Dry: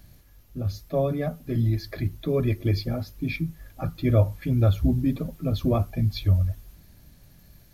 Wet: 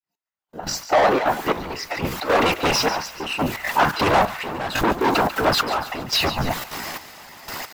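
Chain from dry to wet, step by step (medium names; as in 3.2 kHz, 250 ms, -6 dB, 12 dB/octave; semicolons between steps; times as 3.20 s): fade-in on the opening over 2.30 s; overdrive pedal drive 37 dB, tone 2.3 kHz, clips at -8 dBFS; in parallel at -1 dB: peak limiter -18 dBFS, peak gain reduction 9.5 dB; on the sum: whisper effect; bass shelf 320 Hz -12 dB; trance gate "xx......xx.xxx.x" 176 bpm -12 dB; gate with hold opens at -39 dBFS; spectral noise reduction 13 dB; pitch shift +2.5 st; on a send: feedback echo behind a high-pass 143 ms, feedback 49%, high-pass 1.5 kHz, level -13.5 dB; on the sum: saturation -14 dBFS, distortion -14 dB; peaking EQ 1 kHz +7.5 dB 1.2 oct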